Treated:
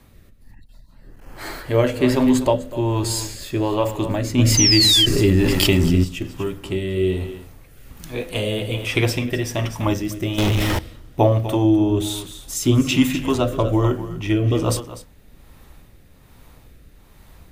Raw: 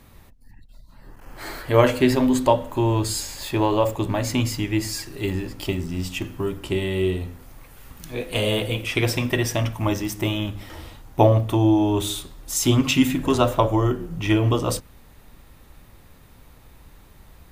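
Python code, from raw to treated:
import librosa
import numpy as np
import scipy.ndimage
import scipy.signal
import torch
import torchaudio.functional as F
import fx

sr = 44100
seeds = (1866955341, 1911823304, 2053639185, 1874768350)

p1 = x + fx.echo_single(x, sr, ms=249, db=-13.0, dry=0)
p2 = fx.rotary(p1, sr, hz=1.2)
p3 = fx.leveller(p2, sr, passes=5, at=(10.38, 10.79))
p4 = fx.spec_paint(p3, sr, seeds[0], shape='fall', start_s=4.57, length_s=0.49, low_hz=3000.0, high_hz=6300.0, level_db=-25.0)
p5 = fx.env_flatten(p4, sr, amount_pct=70, at=(4.37, 6.03), fade=0.02)
y = F.gain(torch.from_numpy(p5), 2.5).numpy()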